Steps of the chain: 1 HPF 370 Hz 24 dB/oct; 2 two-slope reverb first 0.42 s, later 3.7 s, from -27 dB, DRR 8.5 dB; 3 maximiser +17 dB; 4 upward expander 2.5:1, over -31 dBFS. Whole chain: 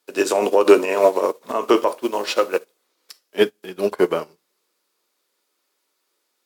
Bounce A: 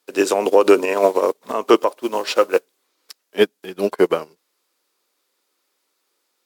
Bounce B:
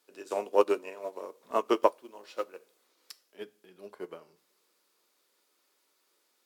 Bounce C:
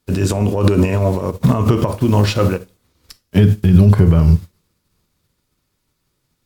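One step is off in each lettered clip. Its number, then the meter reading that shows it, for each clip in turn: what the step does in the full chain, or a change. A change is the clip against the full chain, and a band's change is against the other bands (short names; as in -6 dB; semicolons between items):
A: 2, momentary loudness spread change -2 LU; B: 3, crest factor change +7.5 dB; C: 1, 125 Hz band +35.0 dB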